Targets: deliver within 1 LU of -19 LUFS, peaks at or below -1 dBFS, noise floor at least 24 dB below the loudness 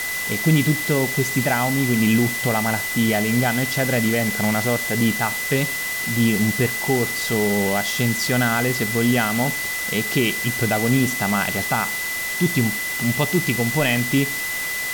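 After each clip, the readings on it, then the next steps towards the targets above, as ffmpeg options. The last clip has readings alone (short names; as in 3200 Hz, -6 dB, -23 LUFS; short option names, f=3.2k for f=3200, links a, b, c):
steady tone 2000 Hz; tone level -25 dBFS; noise floor -26 dBFS; noise floor target -44 dBFS; loudness -20.0 LUFS; peak -5.5 dBFS; loudness target -19.0 LUFS
-> -af "bandreject=f=2k:w=30"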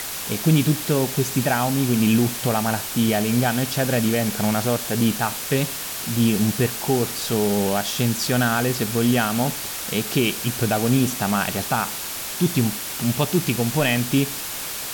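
steady tone none; noise floor -30 dBFS; noise floor target -46 dBFS
-> -af "afftdn=nr=16:nf=-30"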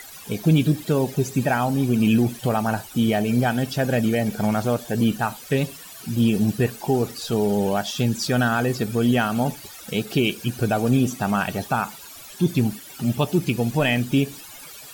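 noise floor -41 dBFS; noise floor target -47 dBFS
-> -af "afftdn=nr=6:nf=-41"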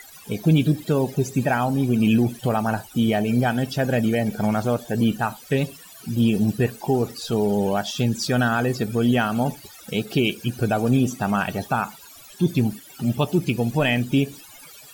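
noise floor -45 dBFS; noise floor target -47 dBFS
-> -af "afftdn=nr=6:nf=-45"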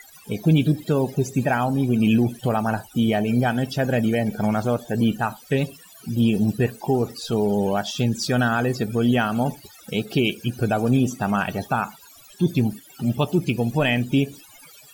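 noise floor -48 dBFS; loudness -22.5 LUFS; peak -7.5 dBFS; loudness target -19.0 LUFS
-> -af "volume=3.5dB"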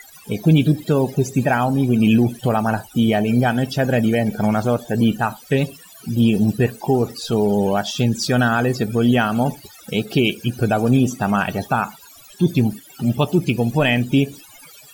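loudness -19.0 LUFS; peak -4.0 dBFS; noise floor -45 dBFS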